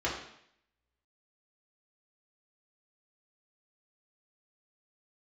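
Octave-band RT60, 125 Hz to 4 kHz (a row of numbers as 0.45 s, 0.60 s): 0.70 s, 0.70 s, 0.70 s, 0.70 s, 0.75 s, 0.70 s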